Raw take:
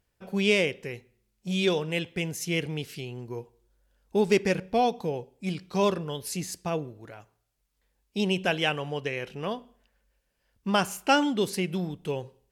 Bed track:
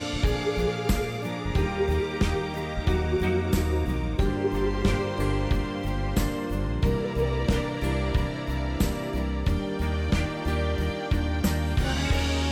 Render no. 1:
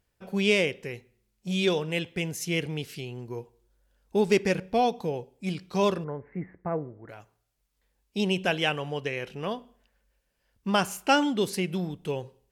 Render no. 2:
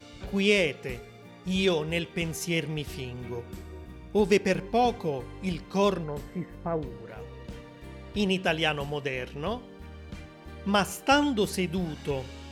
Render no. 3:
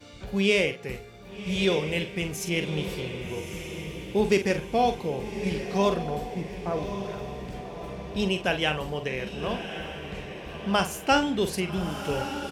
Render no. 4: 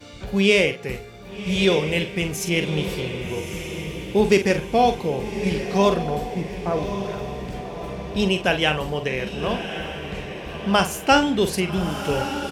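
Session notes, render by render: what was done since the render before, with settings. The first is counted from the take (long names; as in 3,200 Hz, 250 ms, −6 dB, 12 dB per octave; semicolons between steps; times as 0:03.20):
0:06.04–0:07.09: Chebyshev low-pass filter 2,100 Hz, order 6
mix in bed track −17.5 dB
double-tracking delay 46 ms −9 dB; on a send: feedback delay with all-pass diffusion 1,178 ms, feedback 48%, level −9 dB
level +5.5 dB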